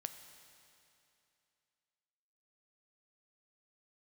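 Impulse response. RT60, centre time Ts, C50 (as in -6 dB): 2.7 s, 30 ms, 9.0 dB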